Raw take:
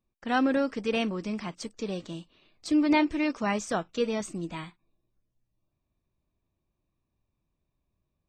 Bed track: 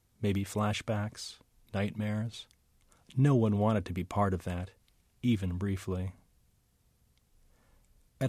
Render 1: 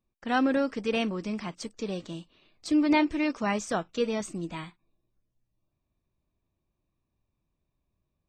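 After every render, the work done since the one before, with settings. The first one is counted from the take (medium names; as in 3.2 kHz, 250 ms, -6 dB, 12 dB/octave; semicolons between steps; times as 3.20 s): no audible change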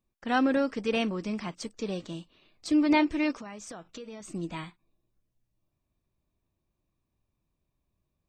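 3.40–4.30 s: compression 8:1, threshold -39 dBFS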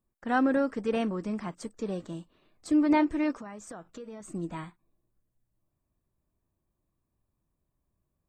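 high-order bell 3.7 kHz -9 dB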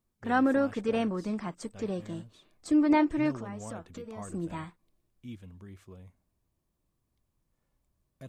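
add bed track -15 dB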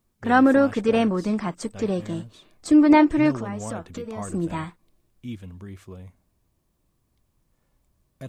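trim +8.5 dB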